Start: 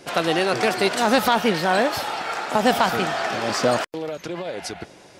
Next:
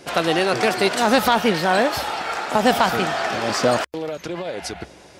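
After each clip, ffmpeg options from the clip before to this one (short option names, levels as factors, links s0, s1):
-af "equalizer=f=66:t=o:w=0.29:g=12,volume=1.19"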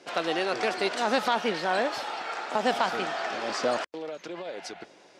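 -af "highpass=260,lowpass=6800,volume=0.398"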